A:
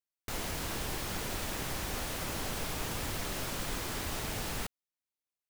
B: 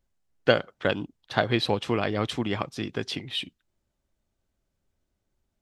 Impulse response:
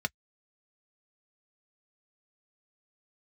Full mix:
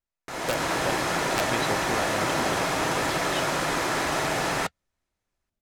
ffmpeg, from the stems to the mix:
-filter_complex "[0:a]adynamicsmooth=sensitivity=5:basefreq=7600,highpass=frequency=280:poles=1,volume=2dB,asplit=2[link_01][link_02];[link_02]volume=-11dB[link_03];[1:a]aeval=exprs='(mod(2.24*val(0)+1,2)-1)/2.24':channel_layout=same,volume=-18.5dB[link_04];[2:a]atrim=start_sample=2205[link_05];[link_03][link_05]afir=irnorm=-1:irlink=0[link_06];[link_01][link_04][link_06]amix=inputs=3:normalize=0,dynaudnorm=framelen=310:gausssize=3:maxgain=11.5dB"

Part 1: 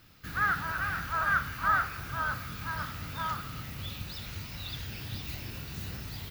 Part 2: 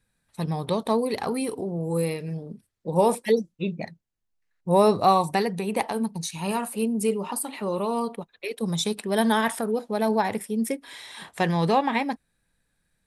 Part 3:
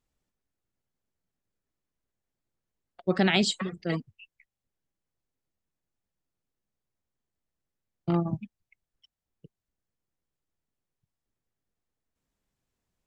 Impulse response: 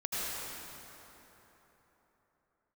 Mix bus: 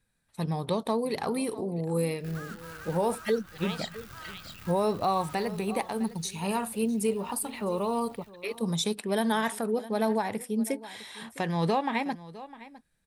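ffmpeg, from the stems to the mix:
-filter_complex "[0:a]acompressor=threshold=-33dB:ratio=8,acrusher=bits=7:dc=4:mix=0:aa=0.000001,adelay=2000,volume=-9dB,afade=type=out:start_time=5.36:duration=0.36:silence=0.266073,asplit=2[link_01][link_02];[link_02]volume=-10.5dB[link_03];[1:a]volume=-2.5dB,asplit=3[link_04][link_05][link_06];[link_05]volume=-19.5dB[link_07];[2:a]highpass=1000,equalizer=frequency=3800:width=0.58:gain=12.5,adelay=350,volume=-14.5dB,asplit=2[link_08][link_09];[link_09]volume=-15.5dB[link_10];[link_06]apad=whole_len=591746[link_11];[link_08][link_11]sidechaincompress=threshold=-33dB:ratio=8:attack=16:release=882[link_12];[link_03][link_07][link_10]amix=inputs=3:normalize=0,aecho=0:1:656:1[link_13];[link_01][link_04][link_12][link_13]amix=inputs=4:normalize=0,alimiter=limit=-17dB:level=0:latency=1:release=261"

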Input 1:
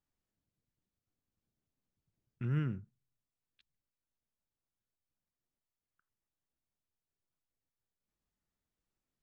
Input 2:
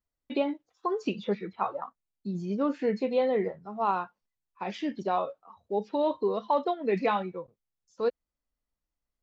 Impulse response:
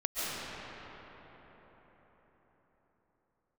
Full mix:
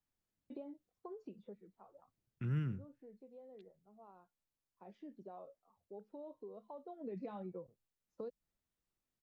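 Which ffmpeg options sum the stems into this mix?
-filter_complex "[0:a]volume=-2dB[link_01];[1:a]agate=range=-33dB:threshold=-60dB:ratio=3:detection=peak,firequalizer=gain_entry='entry(620,0);entry(950,-8);entry(1500,-10);entry(2300,-16)':delay=0.05:min_phase=1,acompressor=threshold=-35dB:ratio=2,adelay=200,volume=7dB,afade=type=out:start_time=1.05:duration=0.73:silence=0.266073,afade=type=in:start_time=4.39:duration=0.65:silence=0.421697,afade=type=in:start_time=6.87:duration=0.29:silence=0.266073[link_02];[link_01][link_02]amix=inputs=2:normalize=0,acrossover=split=200|3000[link_03][link_04][link_05];[link_04]acompressor=threshold=-44dB:ratio=6[link_06];[link_03][link_06][link_05]amix=inputs=3:normalize=0"

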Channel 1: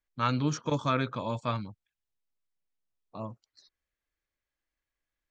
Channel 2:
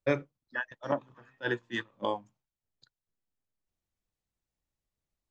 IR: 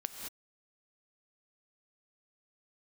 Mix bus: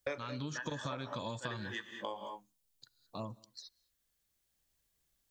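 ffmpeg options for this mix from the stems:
-filter_complex "[0:a]acrossover=split=3300[link_01][link_02];[link_02]acompressor=threshold=-49dB:ratio=4:attack=1:release=60[link_03];[link_01][link_03]amix=inputs=2:normalize=0,aexciter=amount=3.6:drive=4.8:freq=3100,acompressor=threshold=-31dB:ratio=6,volume=-1.5dB,asplit=3[link_04][link_05][link_06];[link_05]volume=-21.5dB[link_07];[1:a]acrossover=split=390|3000[link_08][link_09][link_10];[link_08]acompressor=threshold=-45dB:ratio=6[link_11];[link_11][link_09][link_10]amix=inputs=3:normalize=0,highshelf=frequency=5400:gain=10,volume=0dB,asplit=2[link_12][link_13];[link_13]volume=-7.5dB[link_14];[link_06]apad=whole_len=234127[link_15];[link_12][link_15]sidechaincompress=threshold=-55dB:ratio=8:attack=16:release=970[link_16];[2:a]atrim=start_sample=2205[link_17];[link_07][link_14]amix=inputs=2:normalize=0[link_18];[link_18][link_17]afir=irnorm=-1:irlink=0[link_19];[link_04][link_16][link_19]amix=inputs=3:normalize=0,acompressor=threshold=-35dB:ratio=10"

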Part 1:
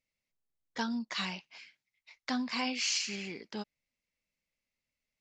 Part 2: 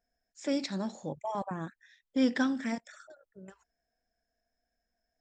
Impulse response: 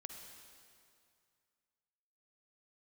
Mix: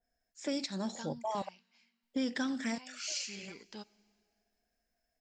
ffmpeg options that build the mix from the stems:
-filter_complex "[0:a]crystalizer=i=1.5:c=0,adelay=200,volume=-2dB,afade=type=out:start_time=1.11:duration=0.22:silence=0.446684,afade=type=in:start_time=2.92:duration=0.29:silence=0.251189,asplit=2[link_01][link_02];[link_02]volume=-12dB[link_03];[1:a]adynamicequalizer=threshold=0.00316:dfrequency=2600:dqfactor=0.7:tfrequency=2600:tqfactor=0.7:attack=5:release=100:ratio=0.375:range=3.5:mode=boostabove:tftype=highshelf,volume=-0.5dB,asplit=3[link_04][link_05][link_06];[link_04]atrim=end=1.49,asetpts=PTS-STARTPTS,afade=type=out:start_time=1.486:duration=0.004:curve=hsin[link_07];[link_05]atrim=start=1.49:end=2.03,asetpts=PTS-STARTPTS,volume=0[link_08];[link_06]atrim=start=2.03,asetpts=PTS-STARTPTS,afade=type=in:duration=0.004:curve=hsin[link_09];[link_07][link_08][link_09]concat=n=3:v=0:a=1[link_10];[2:a]atrim=start_sample=2205[link_11];[link_03][link_11]afir=irnorm=-1:irlink=0[link_12];[link_01][link_10][link_12]amix=inputs=3:normalize=0,alimiter=level_in=0.5dB:limit=-24dB:level=0:latency=1:release=240,volume=-0.5dB"

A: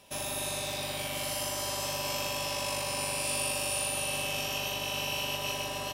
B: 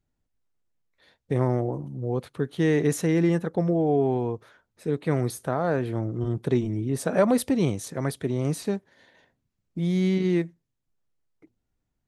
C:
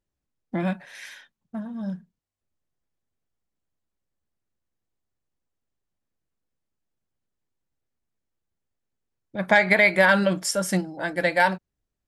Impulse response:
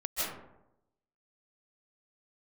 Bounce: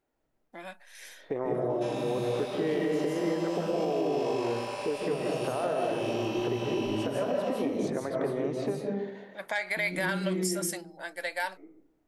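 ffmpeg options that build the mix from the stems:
-filter_complex "[0:a]adelay=1700,volume=-8.5dB,asplit=2[link_01][link_02];[link_02]volume=-18.5dB[link_03];[1:a]equalizer=frequency=2200:width_type=o:width=0.77:gain=2.5,acompressor=threshold=-32dB:ratio=6,volume=-4dB,asplit=2[link_04][link_05];[link_05]volume=-6dB[link_06];[2:a]dynaudnorm=framelen=270:gausssize=11:maxgain=6dB,aderivative,volume=-3dB,asplit=2[link_07][link_08];[link_08]apad=whole_len=532331[link_09];[link_04][link_09]sidechaincompress=threshold=-55dB:ratio=8:attack=16:release=310[link_10];[link_01][link_10]amix=inputs=2:normalize=0,highpass=290,lowpass=6000,alimiter=level_in=8.5dB:limit=-24dB:level=0:latency=1:release=325,volume=-8.5dB,volume=0dB[link_11];[3:a]atrim=start_sample=2205[link_12];[link_03][link_06]amix=inputs=2:normalize=0[link_13];[link_13][link_12]afir=irnorm=-1:irlink=0[link_14];[link_07][link_11][link_14]amix=inputs=3:normalize=0,equalizer=frequency=520:width_type=o:width=3:gain=11.5,alimiter=limit=-19.5dB:level=0:latency=1:release=136"

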